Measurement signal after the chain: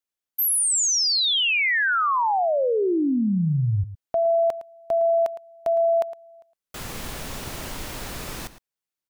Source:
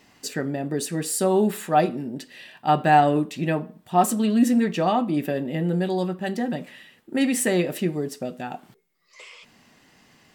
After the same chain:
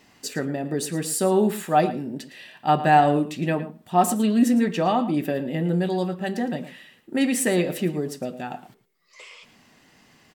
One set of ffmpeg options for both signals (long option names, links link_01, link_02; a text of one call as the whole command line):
ffmpeg -i in.wav -filter_complex "[0:a]asplit=2[link_01][link_02];[link_02]adelay=110.8,volume=-14dB,highshelf=frequency=4000:gain=-2.49[link_03];[link_01][link_03]amix=inputs=2:normalize=0" out.wav